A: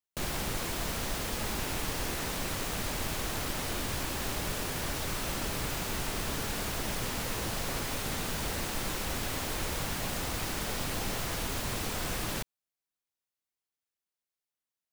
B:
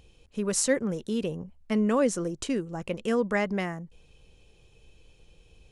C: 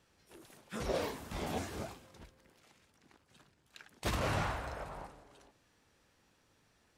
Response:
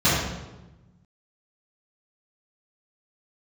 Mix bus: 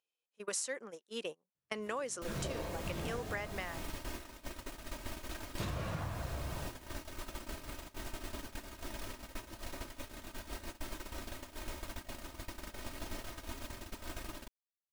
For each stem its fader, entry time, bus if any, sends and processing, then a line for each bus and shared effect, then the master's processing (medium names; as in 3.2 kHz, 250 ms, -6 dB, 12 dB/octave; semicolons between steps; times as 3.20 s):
-6.0 dB, 2.05 s, no send, treble shelf 2.8 kHz -4 dB; comb 3.2 ms, depth 73%
+3.0 dB, 0.00 s, no send, Bessel high-pass 790 Hz, order 2
+1.5 dB, 1.55 s, send -18.5 dB, reverb removal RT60 0.72 s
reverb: on, RT60 1.1 s, pre-delay 3 ms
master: gate -36 dBFS, range -31 dB; compression 6:1, threshold -36 dBFS, peak gain reduction 15 dB